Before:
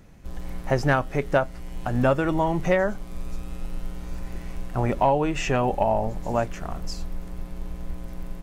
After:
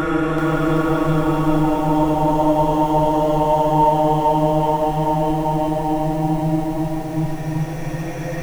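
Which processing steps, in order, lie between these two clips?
source passing by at 0:02.00, 27 m/s, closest 9.9 metres
low-shelf EQ 78 Hz −5.5 dB
mains-hum notches 60/120/180/240/300/360/420/480 Hz
extreme stretch with random phases 22×, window 0.25 s, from 0:02.14
feedback echo at a low word length 384 ms, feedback 55%, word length 8 bits, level −4 dB
level +6.5 dB

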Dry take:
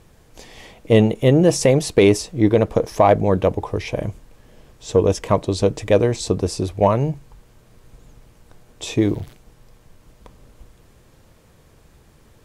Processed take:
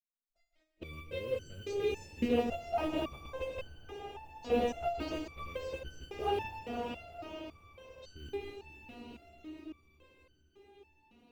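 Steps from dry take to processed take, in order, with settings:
loose part that buzzes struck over −30 dBFS, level −18 dBFS
noise gate −38 dBFS, range −36 dB
low-pass filter 4,300 Hz 12 dB per octave
notch filter 1,100 Hz, Q 28
output level in coarse steps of 21 dB
phase-vocoder pitch shift with formants kept −7.5 semitones
noise that follows the level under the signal 34 dB
speed change +10%
feedback delay with all-pass diffusion 514 ms, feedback 68%, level −9 dB
reverb whose tail is shaped and stops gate 280 ms flat, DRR 6 dB
step-sequenced resonator 3.6 Hz 240–1,500 Hz
level +6 dB

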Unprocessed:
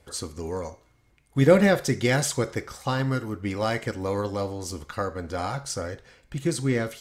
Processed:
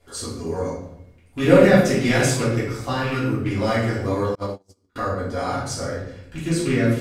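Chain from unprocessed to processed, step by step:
loose part that buzzes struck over −25 dBFS, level −22 dBFS
rectangular room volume 200 cubic metres, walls mixed, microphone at 3.1 metres
0:04.35–0:04.96: noise gate −17 dBFS, range −38 dB
level −6 dB

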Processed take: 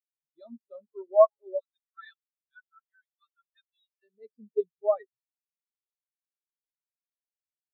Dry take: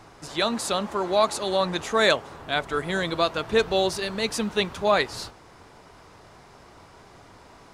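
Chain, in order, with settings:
0:01.59–0:04.03: elliptic high-pass filter 1,300 Hz
comb filter 7.4 ms, depth 33%
every bin expanded away from the loudest bin 4 to 1

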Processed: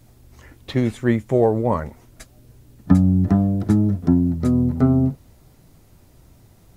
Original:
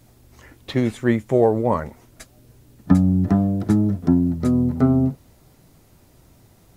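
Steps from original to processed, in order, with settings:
low-shelf EQ 110 Hz +6.5 dB
level −1 dB

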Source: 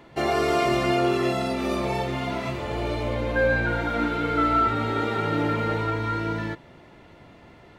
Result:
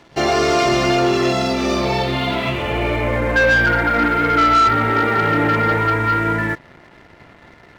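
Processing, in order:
low-pass filter sweep 5,900 Hz → 1,900 Hz, 0:01.68–0:03.18
leveller curve on the samples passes 2

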